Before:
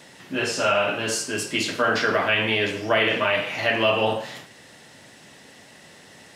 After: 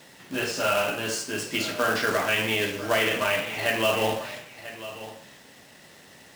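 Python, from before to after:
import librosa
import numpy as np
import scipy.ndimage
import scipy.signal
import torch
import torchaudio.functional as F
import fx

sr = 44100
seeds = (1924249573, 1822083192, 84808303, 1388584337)

p1 = scipy.signal.medfilt(x, 3)
p2 = fx.quant_companded(p1, sr, bits=4)
p3 = p2 + fx.echo_single(p2, sr, ms=993, db=-14.5, dry=0)
y = F.gain(torch.from_numpy(p3), -3.5).numpy()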